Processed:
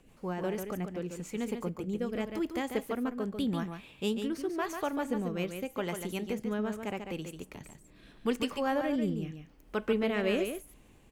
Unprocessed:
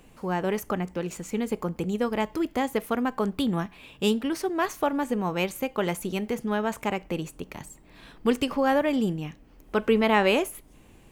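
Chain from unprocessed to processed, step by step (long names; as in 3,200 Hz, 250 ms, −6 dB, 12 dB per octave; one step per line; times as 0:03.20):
rotating-speaker cabinet horn 6.3 Hz, later 0.85 Hz, at 0:00.34
single-tap delay 143 ms −7 dB
level −5 dB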